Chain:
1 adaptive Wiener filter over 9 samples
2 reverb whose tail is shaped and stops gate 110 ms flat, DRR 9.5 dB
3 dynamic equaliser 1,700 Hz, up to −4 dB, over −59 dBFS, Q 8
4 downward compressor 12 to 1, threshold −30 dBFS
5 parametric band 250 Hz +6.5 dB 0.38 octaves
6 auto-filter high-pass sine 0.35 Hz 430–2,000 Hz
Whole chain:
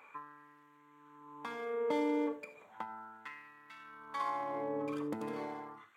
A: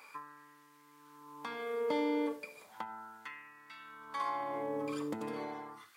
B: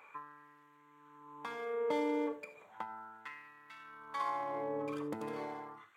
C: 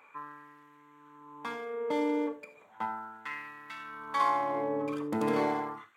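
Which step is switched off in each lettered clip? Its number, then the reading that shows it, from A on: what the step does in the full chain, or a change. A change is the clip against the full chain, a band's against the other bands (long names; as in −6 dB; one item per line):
1, 4 kHz band +4.0 dB
5, 250 Hz band −2.5 dB
4, average gain reduction 5.5 dB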